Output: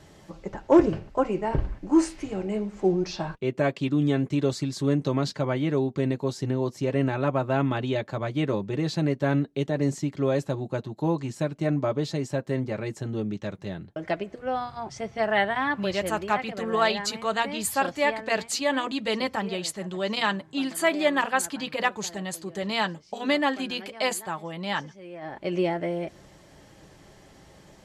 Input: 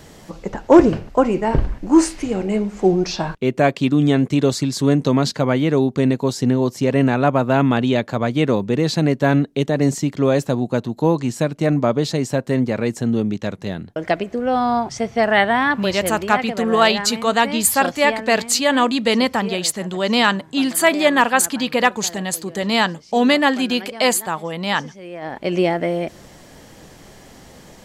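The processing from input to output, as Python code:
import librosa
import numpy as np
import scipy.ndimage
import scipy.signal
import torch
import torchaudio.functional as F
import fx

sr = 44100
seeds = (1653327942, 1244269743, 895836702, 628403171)

y = fx.brickwall_lowpass(x, sr, high_hz=13000.0)
y = fx.high_shelf(y, sr, hz=6600.0, db=-6.0)
y = fx.notch_comb(y, sr, f0_hz=240.0)
y = y * librosa.db_to_amplitude(-7.0)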